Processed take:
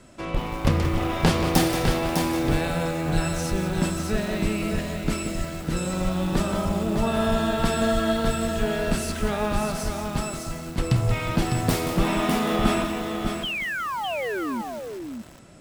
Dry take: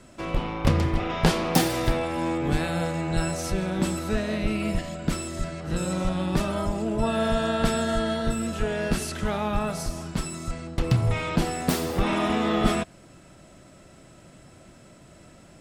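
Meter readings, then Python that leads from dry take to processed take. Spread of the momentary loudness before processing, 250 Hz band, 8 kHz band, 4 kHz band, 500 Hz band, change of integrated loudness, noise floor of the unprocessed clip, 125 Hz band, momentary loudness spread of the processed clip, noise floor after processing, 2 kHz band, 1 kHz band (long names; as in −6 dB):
8 LU, +2.0 dB, +2.0 dB, +2.5 dB, +1.5 dB, +1.0 dB, −51 dBFS, +1.5 dB, 7 LU, −35 dBFS, +3.0 dB, +2.0 dB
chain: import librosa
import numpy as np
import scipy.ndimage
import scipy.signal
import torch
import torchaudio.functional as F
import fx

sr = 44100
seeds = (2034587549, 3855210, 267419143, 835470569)

p1 = fx.spec_paint(x, sr, seeds[0], shape='fall', start_s=13.43, length_s=1.19, low_hz=210.0, high_hz=3300.0, level_db=-29.0)
p2 = p1 + fx.echo_single(p1, sr, ms=604, db=-5.5, dry=0)
y = fx.echo_crushed(p2, sr, ms=179, feedback_pct=55, bits=6, wet_db=-9.0)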